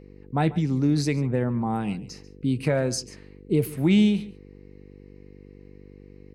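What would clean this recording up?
de-hum 49 Hz, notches 10; inverse comb 0.141 s -18.5 dB

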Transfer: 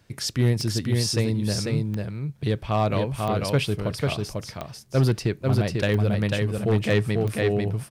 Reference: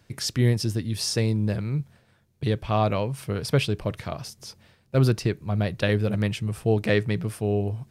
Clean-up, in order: clip repair -13.5 dBFS; de-click; inverse comb 0.494 s -3.5 dB

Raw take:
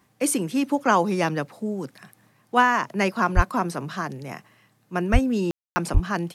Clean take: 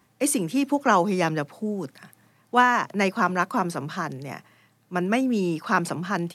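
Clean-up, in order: 3.35–3.47 HPF 140 Hz 24 dB/oct; 5.12–5.24 HPF 140 Hz 24 dB/oct; 5.93–6.05 HPF 140 Hz 24 dB/oct; room tone fill 5.51–5.76

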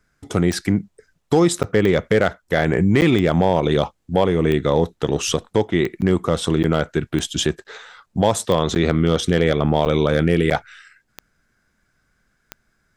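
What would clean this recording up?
clip repair -6 dBFS; de-click; interpolate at 1.63/3.01/6.01/6.63/7.64/8.75/9.85/10.5, 9.3 ms

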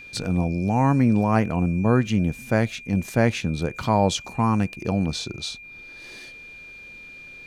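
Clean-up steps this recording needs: notch 2400 Hz, Q 30

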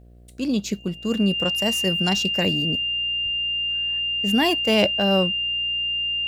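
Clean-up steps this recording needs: de-hum 59.6 Hz, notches 12; notch 2800 Hz, Q 30

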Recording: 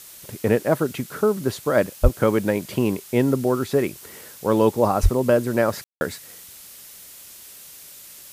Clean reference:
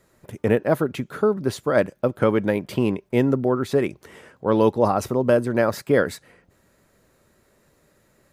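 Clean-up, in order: de-plosive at 2.02/5.02; room tone fill 5.84–6.01; noise print and reduce 19 dB

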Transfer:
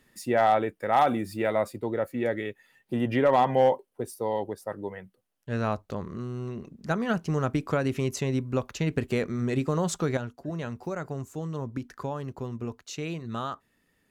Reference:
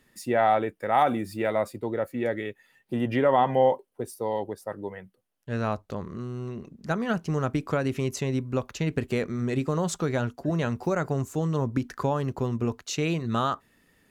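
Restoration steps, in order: clip repair -13 dBFS; gain 0 dB, from 10.17 s +7 dB

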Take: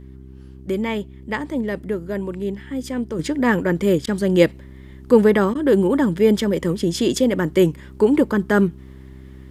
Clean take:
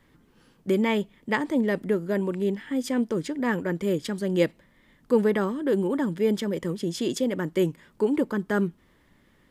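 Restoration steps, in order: de-hum 65.4 Hz, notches 6; interpolate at 4.06/5.54, 10 ms; gain 0 dB, from 3.19 s -8 dB

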